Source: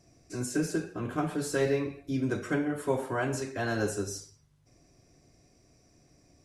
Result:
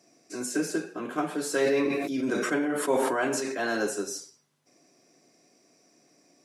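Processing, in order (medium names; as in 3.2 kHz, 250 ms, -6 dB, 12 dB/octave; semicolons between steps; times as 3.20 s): high-pass 200 Hz 24 dB/octave; bass shelf 350 Hz -4 dB; 1.47–3.83 s: decay stretcher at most 24 dB/s; trim +3.5 dB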